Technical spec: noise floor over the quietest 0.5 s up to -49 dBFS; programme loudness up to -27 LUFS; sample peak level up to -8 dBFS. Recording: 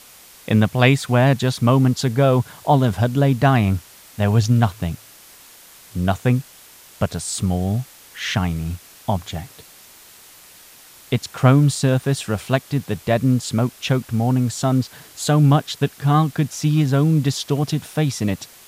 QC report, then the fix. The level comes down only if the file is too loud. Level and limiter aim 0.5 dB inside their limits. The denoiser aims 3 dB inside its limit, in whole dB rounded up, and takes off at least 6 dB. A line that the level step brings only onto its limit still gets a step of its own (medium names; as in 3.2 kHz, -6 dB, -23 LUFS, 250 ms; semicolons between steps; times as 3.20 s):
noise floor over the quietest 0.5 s -46 dBFS: fail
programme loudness -19.5 LUFS: fail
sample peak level -2.0 dBFS: fail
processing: trim -8 dB